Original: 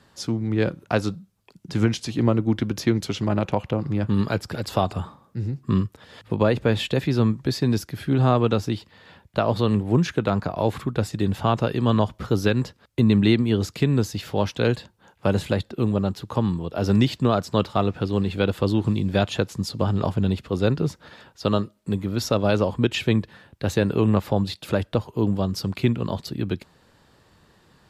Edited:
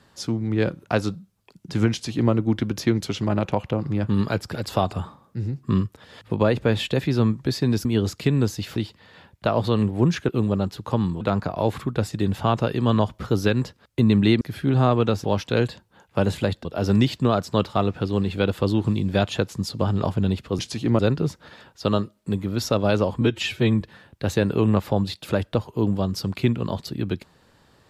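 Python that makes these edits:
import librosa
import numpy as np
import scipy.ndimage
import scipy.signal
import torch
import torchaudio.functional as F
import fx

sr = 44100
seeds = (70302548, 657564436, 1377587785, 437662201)

y = fx.edit(x, sr, fx.duplicate(start_s=1.92, length_s=0.4, to_s=20.59),
    fx.swap(start_s=7.85, length_s=0.83, other_s=13.41, other_length_s=0.91),
    fx.move(start_s=15.73, length_s=0.92, to_s=10.21),
    fx.stretch_span(start_s=22.81, length_s=0.4, factor=1.5), tone=tone)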